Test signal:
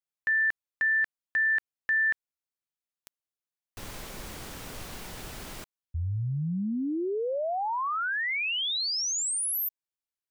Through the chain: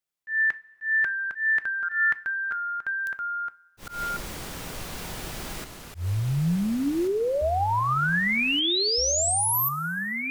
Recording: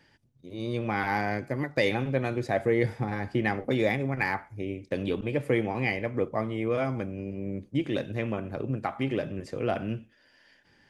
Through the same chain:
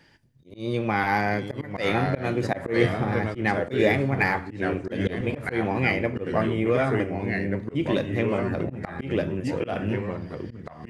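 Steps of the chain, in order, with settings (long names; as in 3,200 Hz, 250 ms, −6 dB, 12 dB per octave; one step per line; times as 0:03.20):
delay with pitch and tempo change per echo 744 ms, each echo −2 semitones, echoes 2, each echo −6 dB
coupled-rooms reverb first 0.26 s, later 1.9 s, from −18 dB, DRR 13 dB
volume swells 144 ms
level +4.5 dB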